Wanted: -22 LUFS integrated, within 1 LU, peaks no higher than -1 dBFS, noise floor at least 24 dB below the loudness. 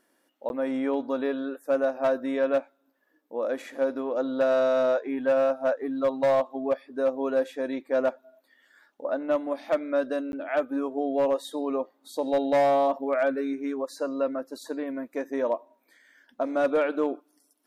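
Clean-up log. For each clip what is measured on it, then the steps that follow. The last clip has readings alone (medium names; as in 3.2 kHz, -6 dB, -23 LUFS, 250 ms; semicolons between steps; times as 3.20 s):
clipped samples 0.7%; clipping level -17.0 dBFS; dropouts 2; longest dropout 11 ms; loudness -27.5 LUFS; peak level -17.0 dBFS; loudness target -22.0 LUFS
-> clip repair -17 dBFS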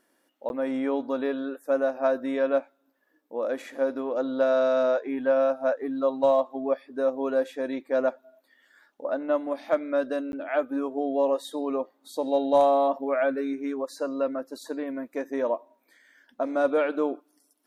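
clipped samples 0.0%; dropouts 2; longest dropout 11 ms
-> interpolate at 0.49/10.32 s, 11 ms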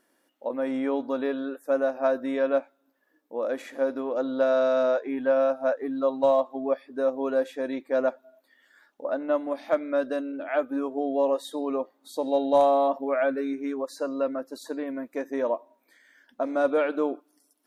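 dropouts 0; loudness -27.0 LUFS; peak level -10.0 dBFS; loudness target -22.0 LUFS
-> trim +5 dB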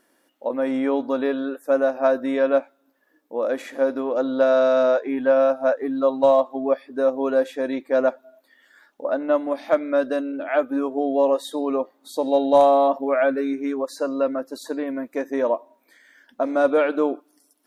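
loudness -22.0 LUFS; peak level -5.0 dBFS; noise floor -65 dBFS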